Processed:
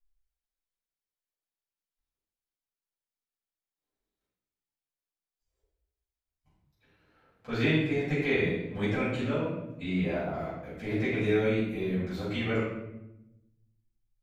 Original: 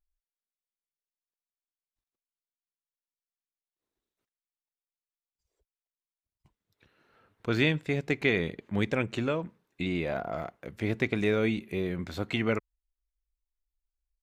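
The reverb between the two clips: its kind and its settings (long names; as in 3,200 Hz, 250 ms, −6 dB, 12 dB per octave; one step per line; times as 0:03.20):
rectangular room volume 310 cubic metres, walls mixed, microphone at 6.2 metres
level −15.5 dB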